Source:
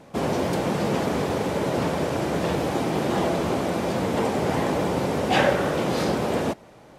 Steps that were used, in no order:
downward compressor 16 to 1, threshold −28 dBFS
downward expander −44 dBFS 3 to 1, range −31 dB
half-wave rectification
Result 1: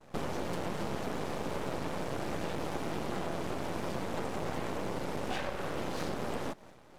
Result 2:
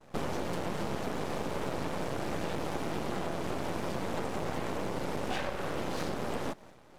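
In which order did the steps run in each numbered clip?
downward expander, then downward compressor, then half-wave rectification
downward expander, then half-wave rectification, then downward compressor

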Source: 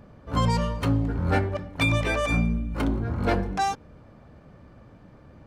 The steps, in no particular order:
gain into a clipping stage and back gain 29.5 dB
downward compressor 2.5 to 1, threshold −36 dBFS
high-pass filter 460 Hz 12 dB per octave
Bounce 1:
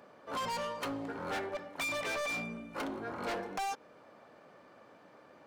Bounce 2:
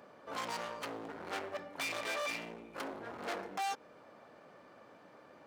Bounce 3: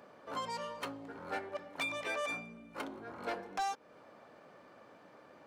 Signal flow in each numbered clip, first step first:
high-pass filter, then gain into a clipping stage and back, then downward compressor
gain into a clipping stage and back, then downward compressor, then high-pass filter
downward compressor, then high-pass filter, then gain into a clipping stage and back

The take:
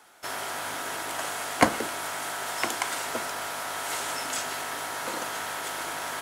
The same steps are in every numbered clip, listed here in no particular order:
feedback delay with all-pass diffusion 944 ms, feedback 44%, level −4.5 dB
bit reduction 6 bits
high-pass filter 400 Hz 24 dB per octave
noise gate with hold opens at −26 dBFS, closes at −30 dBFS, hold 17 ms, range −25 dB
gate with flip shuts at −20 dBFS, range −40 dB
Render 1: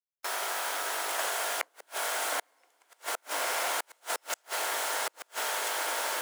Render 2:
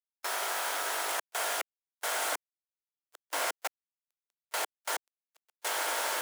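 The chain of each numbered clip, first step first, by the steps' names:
feedback delay with all-pass diffusion, then bit reduction, then noise gate with hold, then gate with flip, then high-pass filter
feedback delay with all-pass diffusion, then gate with flip, then bit reduction, then noise gate with hold, then high-pass filter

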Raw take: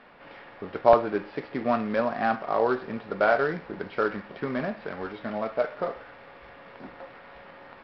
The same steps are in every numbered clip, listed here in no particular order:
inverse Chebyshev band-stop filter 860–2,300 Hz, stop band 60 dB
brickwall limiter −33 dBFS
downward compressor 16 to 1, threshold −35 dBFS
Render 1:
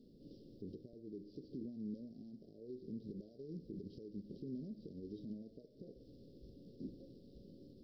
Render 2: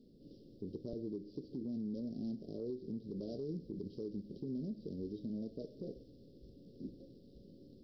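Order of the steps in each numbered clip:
downward compressor, then brickwall limiter, then inverse Chebyshev band-stop filter
inverse Chebyshev band-stop filter, then downward compressor, then brickwall limiter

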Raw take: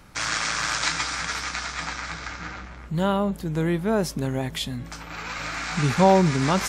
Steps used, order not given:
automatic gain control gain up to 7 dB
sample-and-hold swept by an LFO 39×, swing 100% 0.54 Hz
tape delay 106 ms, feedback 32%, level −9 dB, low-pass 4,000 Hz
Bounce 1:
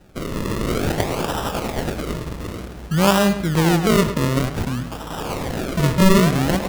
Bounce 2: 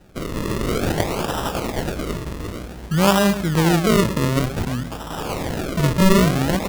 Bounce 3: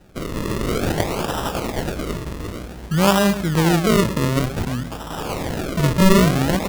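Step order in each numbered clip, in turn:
automatic gain control, then sample-and-hold swept by an LFO, then tape delay
tape delay, then automatic gain control, then sample-and-hold swept by an LFO
automatic gain control, then tape delay, then sample-and-hold swept by an LFO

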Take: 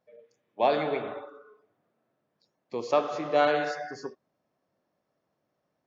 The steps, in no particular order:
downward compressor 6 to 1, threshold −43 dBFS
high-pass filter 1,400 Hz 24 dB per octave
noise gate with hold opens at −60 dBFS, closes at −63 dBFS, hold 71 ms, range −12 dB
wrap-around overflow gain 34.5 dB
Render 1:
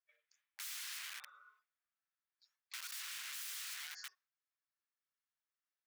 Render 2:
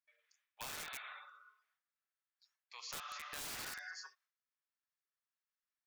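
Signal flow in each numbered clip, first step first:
wrap-around overflow, then downward compressor, then high-pass filter, then noise gate with hold
noise gate with hold, then high-pass filter, then wrap-around overflow, then downward compressor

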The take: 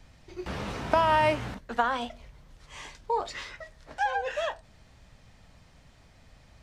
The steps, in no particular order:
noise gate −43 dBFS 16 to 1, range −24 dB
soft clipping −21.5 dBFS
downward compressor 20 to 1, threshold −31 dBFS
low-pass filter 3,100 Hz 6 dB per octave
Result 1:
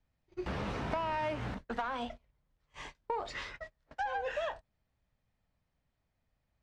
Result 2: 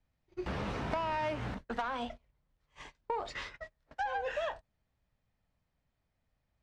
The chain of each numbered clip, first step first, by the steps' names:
soft clipping, then downward compressor, then noise gate, then low-pass filter
low-pass filter, then soft clipping, then downward compressor, then noise gate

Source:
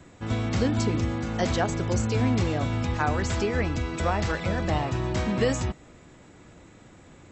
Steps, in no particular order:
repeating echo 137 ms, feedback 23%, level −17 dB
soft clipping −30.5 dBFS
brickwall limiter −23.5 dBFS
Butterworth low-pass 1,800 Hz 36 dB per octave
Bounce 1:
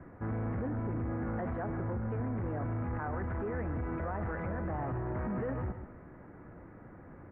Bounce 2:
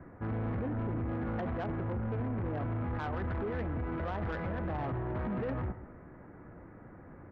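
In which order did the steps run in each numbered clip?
repeating echo, then brickwall limiter, then soft clipping, then Butterworth low-pass
Butterworth low-pass, then brickwall limiter, then repeating echo, then soft clipping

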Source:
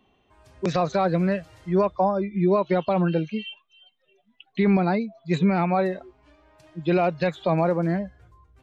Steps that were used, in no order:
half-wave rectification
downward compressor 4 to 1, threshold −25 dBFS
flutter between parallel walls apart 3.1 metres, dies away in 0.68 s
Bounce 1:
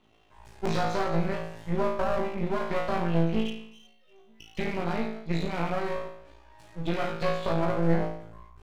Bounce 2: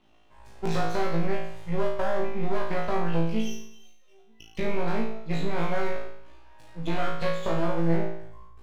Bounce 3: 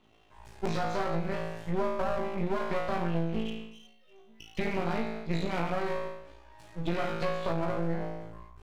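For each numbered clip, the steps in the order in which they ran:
downward compressor, then flutter between parallel walls, then half-wave rectification
downward compressor, then half-wave rectification, then flutter between parallel walls
flutter between parallel walls, then downward compressor, then half-wave rectification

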